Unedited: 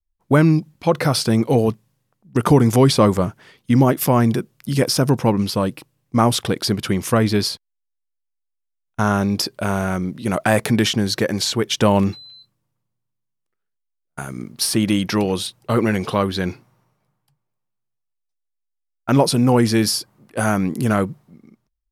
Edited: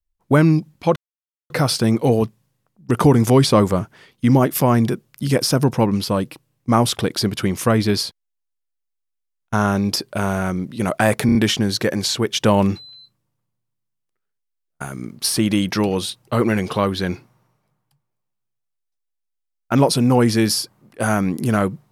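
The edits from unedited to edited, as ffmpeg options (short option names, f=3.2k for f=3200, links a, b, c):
-filter_complex "[0:a]asplit=5[a][b][c][d][e];[a]atrim=end=0.96,asetpts=PTS-STARTPTS,afade=t=out:st=0.956:d=0.004:c=hsin,apad=pad_dur=0.54[f];[b]atrim=start=0.96:end=10.752,asetpts=PTS-STARTPTS,afade=t=in:d=0.004:c=hsin[g];[c]atrim=start=10.718:end=10.752[h];[d]atrim=start=10.718:end=10.752[i];[e]atrim=start=10.718[j];[f][g]concat=n=2:v=0:a=1[k];[k][h]acrossfade=d=0.004:c1=hsin:c2=hsin[l];[l][i]acrossfade=d=0.004:c1=hsin:c2=hsin[m];[m][j]acrossfade=d=0.004:c1=hsin:c2=hsin"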